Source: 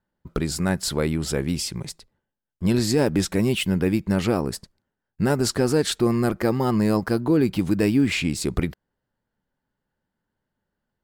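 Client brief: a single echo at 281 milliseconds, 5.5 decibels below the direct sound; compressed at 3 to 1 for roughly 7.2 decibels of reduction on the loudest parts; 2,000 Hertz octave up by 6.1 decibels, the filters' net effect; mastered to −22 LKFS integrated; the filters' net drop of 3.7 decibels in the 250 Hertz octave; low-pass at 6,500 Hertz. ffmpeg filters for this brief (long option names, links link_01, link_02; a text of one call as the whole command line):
ffmpeg -i in.wav -af "lowpass=6500,equalizer=frequency=250:width_type=o:gain=-5,equalizer=frequency=2000:width_type=o:gain=8,acompressor=threshold=-27dB:ratio=3,aecho=1:1:281:0.531,volume=7.5dB" out.wav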